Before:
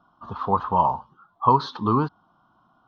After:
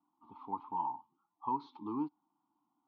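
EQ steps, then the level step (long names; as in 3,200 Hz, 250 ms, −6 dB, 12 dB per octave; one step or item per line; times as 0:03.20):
formant filter u
high-shelf EQ 4,700 Hz +10.5 dB
−6.5 dB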